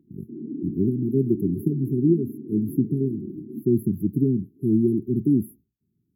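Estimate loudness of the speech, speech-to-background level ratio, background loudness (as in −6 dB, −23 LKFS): −24.0 LKFS, 11.5 dB, −35.5 LKFS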